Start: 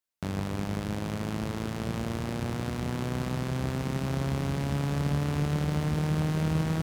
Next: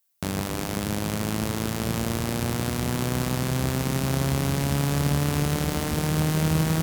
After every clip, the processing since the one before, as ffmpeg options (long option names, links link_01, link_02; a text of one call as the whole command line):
ffmpeg -i in.wav -af "aemphasis=mode=production:type=50kf,bandreject=frequency=50:width_type=h:width=6,bandreject=frequency=100:width_type=h:width=6,bandreject=frequency=150:width_type=h:width=6,bandreject=frequency=200:width_type=h:width=6,volume=5dB" out.wav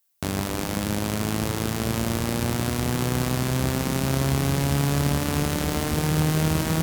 ffmpeg -i in.wav -af "flanger=delay=2.3:depth=1.4:regen=-78:speed=0.65:shape=triangular,volume=6dB" out.wav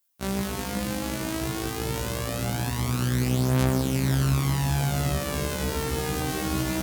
ffmpeg -i in.wav -af "afftfilt=real='re*1.73*eq(mod(b,3),0)':imag='im*1.73*eq(mod(b,3),0)':win_size=2048:overlap=0.75" out.wav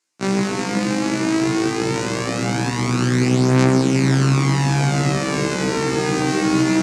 ffmpeg -i in.wav -af "highpass=frequency=130:width=0.5412,highpass=frequency=130:width=1.3066,equalizer=frequency=340:width_type=q:width=4:gain=6,equalizer=frequency=590:width_type=q:width=4:gain=-4,equalizer=frequency=2200:width_type=q:width=4:gain=3,equalizer=frequency=3300:width_type=q:width=4:gain=-7,lowpass=frequency=7500:width=0.5412,lowpass=frequency=7500:width=1.3066,volume=9dB" out.wav